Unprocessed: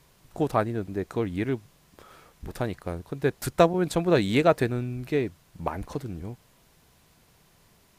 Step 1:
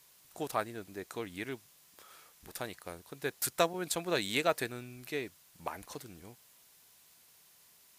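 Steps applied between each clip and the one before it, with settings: tilt +3.5 dB/oct; gain -7.5 dB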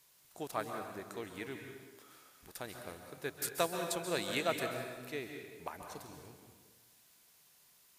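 plate-style reverb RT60 1.4 s, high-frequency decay 0.8×, pre-delay 0.12 s, DRR 4 dB; gain -4.5 dB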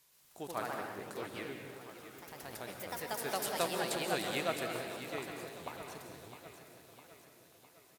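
feedback echo 0.657 s, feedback 55%, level -11 dB; echoes that change speed 0.126 s, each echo +2 st, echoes 3; gain -2 dB

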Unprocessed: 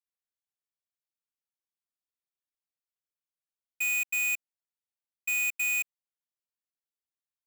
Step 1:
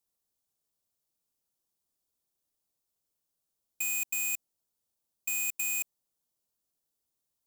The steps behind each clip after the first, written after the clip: bell 2000 Hz -14 dB 1.7 oct; in parallel at +3 dB: negative-ratio compressor -40 dBFS, ratio -0.5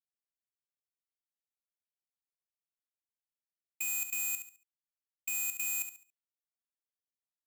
gate with hold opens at -24 dBFS; feedback echo 70 ms, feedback 31%, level -9 dB; gain -3 dB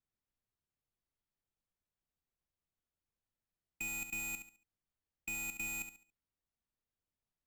RIAA curve playback; gain +3 dB

